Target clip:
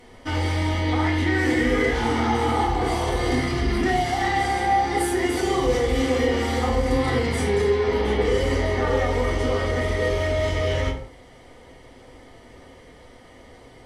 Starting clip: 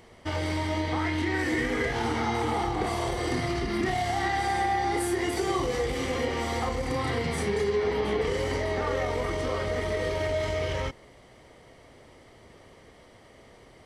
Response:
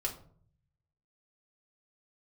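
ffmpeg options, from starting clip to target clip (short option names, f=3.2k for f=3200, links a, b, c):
-filter_complex "[1:a]atrim=start_sample=2205,atrim=end_sample=6174,asetrate=29988,aresample=44100[a];[0:a][a]afir=irnorm=-1:irlink=0"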